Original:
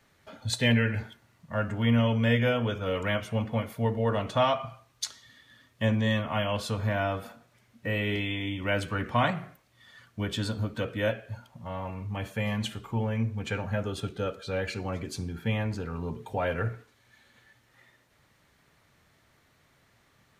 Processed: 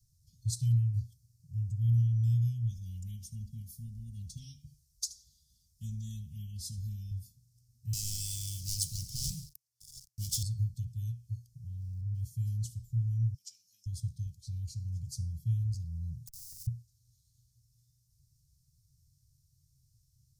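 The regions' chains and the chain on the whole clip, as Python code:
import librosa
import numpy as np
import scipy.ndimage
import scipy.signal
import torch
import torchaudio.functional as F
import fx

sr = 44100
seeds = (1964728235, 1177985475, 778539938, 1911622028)

y = fx.chain(x, sr, fx.comb(ms=4.2, depth=0.87),
    fx.echo_single(ms=76, db=-18.0), at=(2.7, 7.11))
y = fx.chain(y, sr, fx.highpass(hz=1100.0, slope=6),
    fx.leveller(passes=5), at=(7.93, 10.43))
y = fx.chain(y, sr, fx.zero_step(step_db=-45.0),
    fx.bass_treble(bass_db=-1, treble_db=-11), at=(11.8, 12.21))
y = fx.chain(y, sr, fx.highpass(hz=540.0, slope=24),
    fx.peak_eq(hz=5300.0, db=11.5, octaves=0.27), at=(13.34, 13.86))
y = fx.chain(y, sr, fx.robotise(hz=192.0),
    fx.schmitt(flips_db=-44.5),
    fx.spectral_comp(ratio=4.0), at=(16.27, 16.67))
y = scipy.signal.sosfilt(scipy.signal.cheby1(4, 1.0, [140.0, 5100.0], 'bandstop', fs=sr, output='sos'), y)
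y = fx.low_shelf(y, sr, hz=110.0, db=6.5)
y = y * 10.0 ** (-1.5 / 20.0)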